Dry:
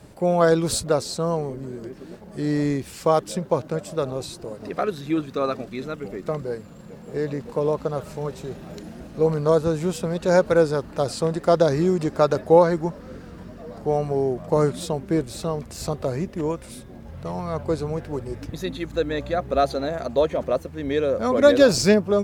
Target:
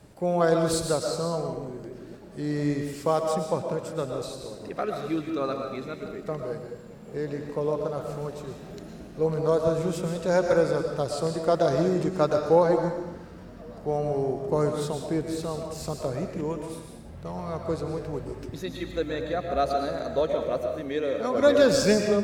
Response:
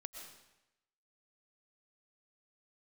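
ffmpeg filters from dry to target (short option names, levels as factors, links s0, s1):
-filter_complex "[0:a]asettb=1/sr,asplit=3[s0][s1][s2];[s0]atrim=end=20.814[s3];[s1]atrim=start=20.81:end=21.35,asetpts=PTS-STARTPTS,afade=t=in:d=0.004:c=qsin,afade=t=out:st=0.536:d=0.004:c=qsin,highpass=f=220:p=1[s4];[s2]atrim=start=21.346[s5];[s3][s4]acrossfade=d=0.004:c1=hsin:c2=qsin[s6];[s6][s5]acrossfade=d=0.004:c1=qsin:c2=hsin[s7];[1:a]atrim=start_sample=2205[s8];[s7][s8]afir=irnorm=-1:irlink=0"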